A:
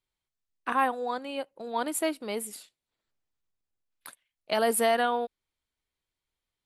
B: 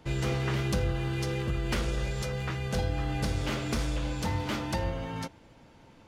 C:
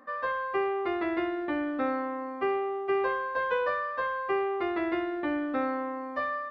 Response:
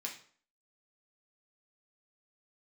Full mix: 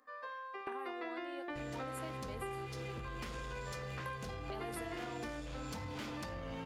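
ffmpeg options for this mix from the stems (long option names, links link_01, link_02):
-filter_complex "[0:a]alimiter=limit=-18.5dB:level=0:latency=1:release=131,volume=-9.5dB,asplit=2[link_01][link_02];[1:a]acompressor=threshold=-36dB:ratio=6,asoftclip=type=tanh:threshold=-35dB,adelay=1500,volume=1.5dB,asplit=2[link_03][link_04];[link_04]volume=-4dB[link_05];[2:a]bass=frequency=250:gain=-13,treble=frequency=4000:gain=11,volume=-3dB,asplit=2[link_06][link_07];[link_07]volume=-12dB[link_08];[link_02]apad=whole_len=287019[link_09];[link_06][link_09]sidechaingate=range=-17dB:threshold=-59dB:ratio=16:detection=peak[link_10];[3:a]atrim=start_sample=2205[link_11];[link_05][link_08]amix=inputs=2:normalize=0[link_12];[link_12][link_11]afir=irnorm=-1:irlink=0[link_13];[link_01][link_03][link_10][link_13]amix=inputs=4:normalize=0,acompressor=threshold=-41dB:ratio=4"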